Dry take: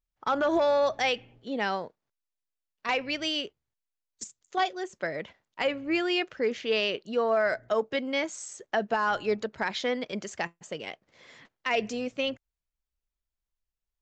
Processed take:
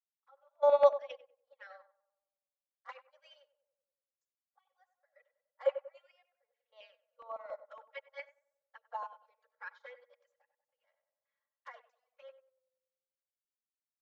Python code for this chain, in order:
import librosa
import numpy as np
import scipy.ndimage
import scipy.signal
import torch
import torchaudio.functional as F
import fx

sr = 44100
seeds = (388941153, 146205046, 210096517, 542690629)

y = fx.high_shelf(x, sr, hz=2200.0, db=-10.5)
y = fx.env_flanger(y, sr, rest_ms=7.6, full_db=-24.5)
y = fx.step_gate(y, sr, bpm=96, pattern='x...xx.xxxxxx', floor_db=-12.0, edge_ms=4.5)
y = scipy.signal.sosfilt(scipy.signal.butter(16, 500.0, 'highpass', fs=sr, output='sos'), y)
y = y + 10.0 ** (-19.0 / 20.0) * np.pad(y, (int(75 * sr / 1000.0), 0))[:len(y)]
y = fx.filter_lfo_notch(y, sr, shape='square', hz=3.6, low_hz=700.0, high_hz=2600.0, q=1.7)
y = fx.peak_eq(y, sr, hz=1400.0, db=8.0, octaves=1.7)
y = y + 0.64 * np.pad(y, (int(3.6 * sr / 1000.0), 0))[:len(y)]
y = fx.echo_tape(y, sr, ms=95, feedback_pct=68, wet_db=-4.5, lp_hz=1400.0, drive_db=7.0, wow_cents=16)
y = fx.upward_expand(y, sr, threshold_db=-42.0, expansion=2.5)